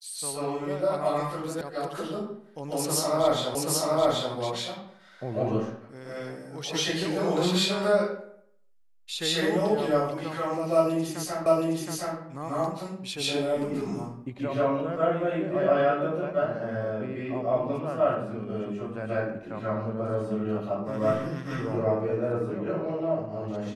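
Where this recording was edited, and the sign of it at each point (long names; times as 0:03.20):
0:01.61: cut off before it has died away
0:03.55: the same again, the last 0.78 s
0:11.46: the same again, the last 0.72 s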